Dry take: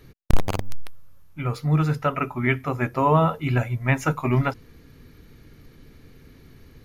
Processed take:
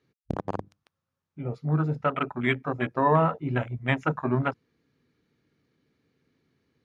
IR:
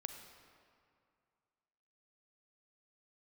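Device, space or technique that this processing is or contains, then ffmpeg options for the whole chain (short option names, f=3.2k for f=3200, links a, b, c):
over-cleaned archive recording: -af "highpass=150,lowpass=6.5k,afwtdn=0.0355,volume=-2dB"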